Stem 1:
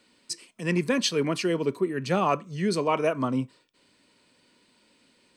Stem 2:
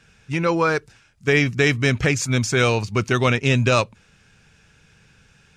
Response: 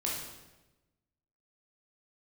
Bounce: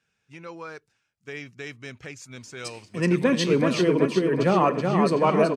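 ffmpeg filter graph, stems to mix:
-filter_complex "[0:a]highshelf=frequency=2900:gain=-10.5,adelay=2350,volume=3dB,asplit=3[link_01][link_02][link_03];[link_02]volume=-17.5dB[link_04];[link_03]volume=-3.5dB[link_05];[1:a]highpass=frequency=210:poles=1,volume=-18.5dB[link_06];[2:a]atrim=start_sample=2205[link_07];[link_04][link_07]afir=irnorm=-1:irlink=0[link_08];[link_05]aecho=0:1:377|754|1131|1508|1885|2262|2639|3016:1|0.55|0.303|0.166|0.0915|0.0503|0.0277|0.0152[link_09];[link_01][link_06][link_08][link_09]amix=inputs=4:normalize=0"

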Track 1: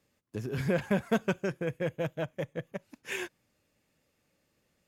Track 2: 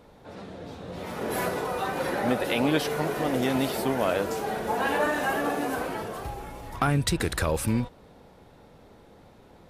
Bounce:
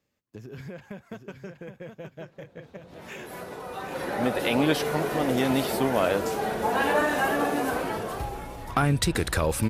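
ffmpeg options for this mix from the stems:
ffmpeg -i stem1.wav -i stem2.wav -filter_complex "[0:a]equalizer=frequency=9600:width_type=o:width=0.22:gain=-14,acompressor=threshold=-33dB:ratio=6,volume=-4dB,asplit=3[link_01][link_02][link_03];[link_02]volume=-7.5dB[link_04];[1:a]dynaudnorm=framelen=480:gausssize=3:maxgain=12dB,adelay=1950,volume=-7.5dB[link_05];[link_03]apad=whole_len=513609[link_06];[link_05][link_06]sidechaincompress=threshold=-55dB:ratio=10:attack=39:release=1010[link_07];[link_04]aecho=0:1:769|1538|2307:1|0.19|0.0361[link_08];[link_01][link_07][link_08]amix=inputs=3:normalize=0" out.wav

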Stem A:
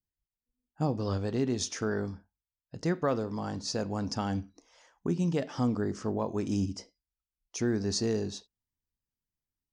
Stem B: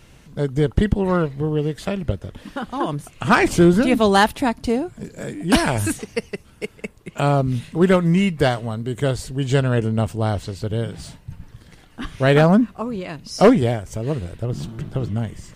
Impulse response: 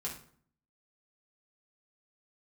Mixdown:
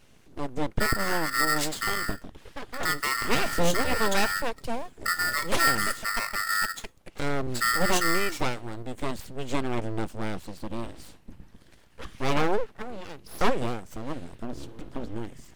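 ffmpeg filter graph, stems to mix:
-filter_complex "[0:a]equalizer=frequency=250:width_type=o:width=1:gain=11,equalizer=frequency=2000:width_type=o:width=1:gain=6,equalizer=frequency=4000:width_type=o:width=1:gain=7,equalizer=frequency=8000:width_type=o:width=1:gain=7,aeval=exprs='val(0)*sgn(sin(2*PI*1600*n/s))':channel_layout=same,volume=-5dB[link_01];[1:a]aeval=exprs='abs(val(0))':channel_layout=same,volume=-7.5dB[link_02];[link_01][link_02]amix=inputs=2:normalize=0"

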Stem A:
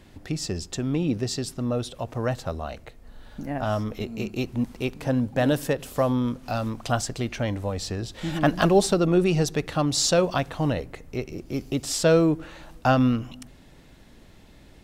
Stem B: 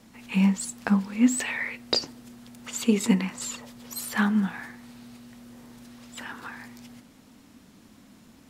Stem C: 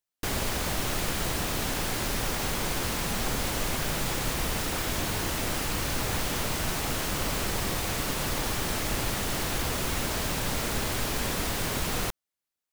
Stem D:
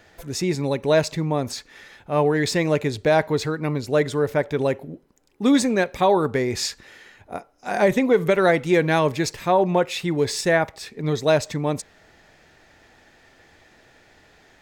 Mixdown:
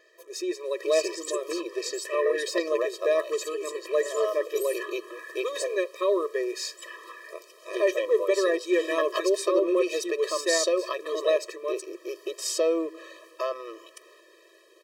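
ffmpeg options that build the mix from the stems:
ffmpeg -i stem1.wav -i stem2.wav -i stem3.wav -i stem4.wav -filter_complex "[0:a]acompressor=threshold=-23dB:ratio=2.5,adelay=550,volume=1.5dB,asplit=3[link_01][link_02][link_03];[link_01]atrim=end=5.78,asetpts=PTS-STARTPTS,afade=type=out:start_time=5.776:duration=0.004:curve=hsin[link_04];[link_02]atrim=start=5.78:end=7.73,asetpts=PTS-STARTPTS,volume=0[link_05];[link_03]atrim=start=7.73,asetpts=PTS-STARTPTS,afade=type=in:duration=0.004:curve=hsin[link_06];[link_04][link_05][link_06]concat=n=3:v=0:a=1[link_07];[1:a]acrossover=split=330[link_08][link_09];[link_09]acompressor=threshold=-37dB:ratio=4[link_10];[link_08][link_10]amix=inputs=2:normalize=0,adelay=650,volume=1.5dB[link_11];[2:a]highpass=360,aemphasis=mode=reproduction:type=75kf,alimiter=level_in=4dB:limit=-24dB:level=0:latency=1:release=290,volume=-4dB,adelay=2100,volume=-17.5dB[link_12];[3:a]volume=-4.5dB[link_13];[link_07][link_11][link_12][link_13]amix=inputs=4:normalize=0,afftfilt=real='re*eq(mod(floor(b*sr/1024/330),2),1)':imag='im*eq(mod(floor(b*sr/1024/330),2),1)':win_size=1024:overlap=0.75" out.wav

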